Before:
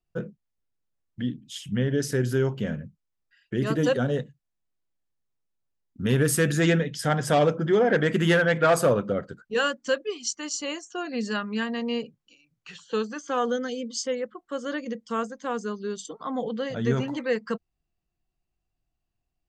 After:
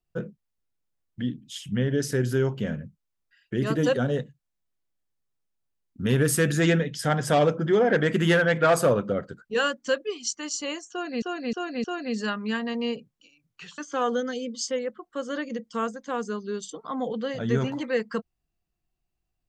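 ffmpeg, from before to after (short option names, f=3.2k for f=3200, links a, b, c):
-filter_complex "[0:a]asplit=5[a][b][c][d][e];[a]atrim=end=11.222[f];[b]atrim=start=10.908:end=11.222[g];[c]atrim=start=10.908:end=11.222[h];[d]atrim=start=10.908:end=12.852[i];[e]atrim=start=13.138[j];[f][g]acrossfade=d=0.004:c1=hsin:c2=hsin[k];[k][h]acrossfade=d=0.004:c1=hsin:c2=hsin[l];[l][i]acrossfade=d=0.004:c1=hsin:c2=hsin[m];[m][j]acrossfade=d=0.004:c1=hsin:c2=hsin"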